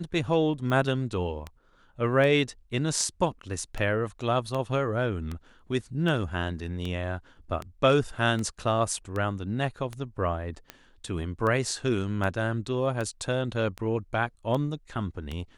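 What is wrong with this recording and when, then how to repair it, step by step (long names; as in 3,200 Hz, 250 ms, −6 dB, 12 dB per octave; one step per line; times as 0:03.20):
scratch tick 78 rpm −20 dBFS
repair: click removal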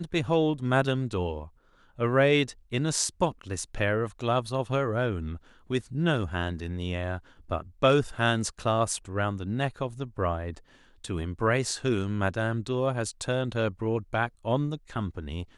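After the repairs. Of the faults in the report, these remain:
none of them is left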